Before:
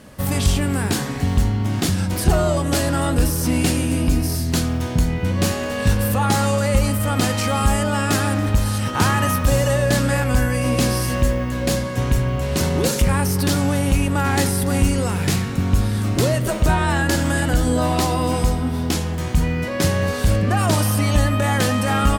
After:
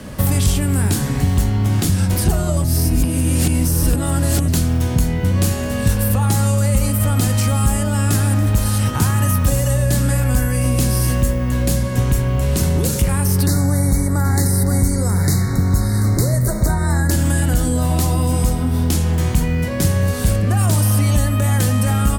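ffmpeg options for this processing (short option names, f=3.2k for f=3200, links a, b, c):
-filter_complex "[0:a]asettb=1/sr,asplit=3[a][b][c];[a]atrim=end=13.464[d];[b]atrim=start=13.46:end=17.11,asetpts=PTS-STARTPTS,afade=t=in:d=0.004:c=qsin,afade=t=out:st=3.646:d=0.004:c=qsin,asuperstop=centerf=2900:order=20:qfactor=1.9[e];[c]atrim=start=17.106[f];[d][e]acrossfade=d=0.004:c1=hsin:c2=qsin[g];[g][f]acrossfade=d=0.004:c1=qsin:c2=hsin,asplit=3[h][i][j];[h]atrim=end=2.642[k];[i]atrim=start=2.638:end=4.482,asetpts=PTS-STARTPTS,areverse[l];[j]atrim=start=4.478[m];[k][l]acrossfade=d=0.004:c1=hsin:c2=hsin[n];[n][m]acrossfade=d=0.004:c1=hsin:c2=hsin,lowshelf=f=200:g=7,bandreject=f=77.36:t=h:w=4,bandreject=f=154.72:t=h:w=4,bandreject=f=232.08:t=h:w=4,bandreject=f=309.44:t=h:w=4,bandreject=f=386.8:t=h:w=4,bandreject=f=464.16:t=h:w=4,bandreject=f=541.52:t=h:w=4,bandreject=f=618.88:t=h:w=4,bandreject=f=696.24:t=h:w=4,bandreject=f=773.6:t=h:w=4,bandreject=f=850.96:t=h:w=4,bandreject=f=928.32:t=h:w=4,bandreject=f=1.00568k:t=h:w=4,bandreject=f=1.08304k:t=h:w=4,bandreject=f=1.1604k:t=h:w=4,bandreject=f=1.23776k:t=h:w=4,bandreject=f=1.31512k:t=h:w=4,bandreject=f=1.39248k:t=h:w=4,bandreject=f=1.46984k:t=h:w=4,bandreject=f=1.5472k:t=h:w=4,bandreject=f=1.62456k:t=h:w=4,bandreject=f=1.70192k:t=h:w=4,bandreject=f=1.77928k:t=h:w=4,bandreject=f=1.85664k:t=h:w=4,bandreject=f=1.934k:t=h:w=4,bandreject=f=2.01136k:t=h:w=4,bandreject=f=2.08872k:t=h:w=4,bandreject=f=2.16608k:t=h:w=4,bandreject=f=2.24344k:t=h:w=4,bandreject=f=2.3208k:t=h:w=4,bandreject=f=2.39816k:t=h:w=4,bandreject=f=2.47552k:t=h:w=4,bandreject=f=2.55288k:t=h:w=4,bandreject=f=2.63024k:t=h:w=4,bandreject=f=2.7076k:t=h:w=4,bandreject=f=2.78496k:t=h:w=4,bandreject=f=2.86232k:t=h:w=4,bandreject=f=2.93968k:t=h:w=4,acrossover=split=110|250|7700[o][p][q][r];[o]acompressor=threshold=-27dB:ratio=4[s];[p]acompressor=threshold=-33dB:ratio=4[t];[q]acompressor=threshold=-35dB:ratio=4[u];[r]acompressor=threshold=-32dB:ratio=4[v];[s][t][u][v]amix=inputs=4:normalize=0,volume=8.5dB"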